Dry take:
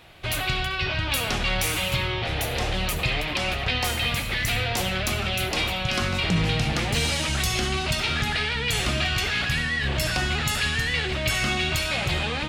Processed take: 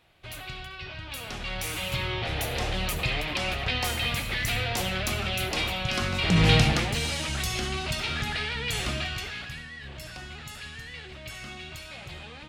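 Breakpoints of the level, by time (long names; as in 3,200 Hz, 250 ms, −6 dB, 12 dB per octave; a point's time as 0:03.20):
0:01.09 −13 dB
0:02.14 −3 dB
0:06.17 −3 dB
0:06.54 +6 dB
0:06.97 −5 dB
0:08.91 −5 dB
0:09.67 −16 dB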